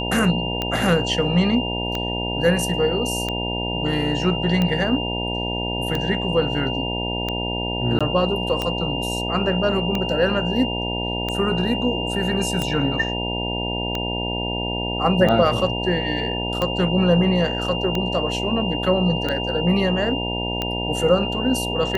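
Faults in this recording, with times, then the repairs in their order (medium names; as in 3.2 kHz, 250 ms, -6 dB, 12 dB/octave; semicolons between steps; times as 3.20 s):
buzz 60 Hz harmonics 16 -27 dBFS
tick 45 rpm -10 dBFS
whine 2.8 kHz -27 dBFS
7.99–8.01 s: dropout 16 ms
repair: de-click; band-stop 2.8 kHz, Q 30; de-hum 60 Hz, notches 16; interpolate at 7.99 s, 16 ms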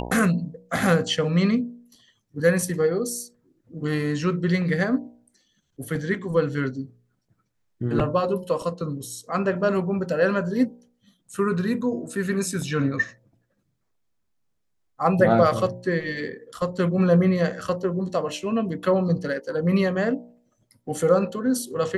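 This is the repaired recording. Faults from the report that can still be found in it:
nothing left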